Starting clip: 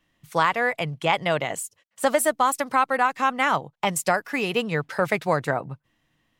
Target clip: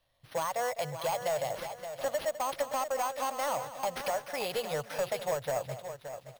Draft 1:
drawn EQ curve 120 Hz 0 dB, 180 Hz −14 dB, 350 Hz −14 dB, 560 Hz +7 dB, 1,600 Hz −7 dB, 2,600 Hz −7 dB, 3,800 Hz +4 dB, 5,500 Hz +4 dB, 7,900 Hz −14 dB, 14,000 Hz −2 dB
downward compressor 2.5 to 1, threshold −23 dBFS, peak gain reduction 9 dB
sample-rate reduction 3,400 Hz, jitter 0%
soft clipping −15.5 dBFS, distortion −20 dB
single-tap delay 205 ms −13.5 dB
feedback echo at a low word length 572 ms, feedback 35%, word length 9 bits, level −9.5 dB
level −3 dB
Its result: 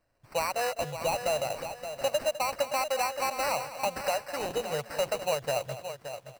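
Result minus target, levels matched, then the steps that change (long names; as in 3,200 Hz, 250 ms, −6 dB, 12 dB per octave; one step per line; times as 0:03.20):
soft clipping: distortion −9 dB; sample-rate reduction: distortion +7 dB
change: sample-rate reduction 7,400 Hz, jitter 0%
change: soft clipping −23 dBFS, distortion −11 dB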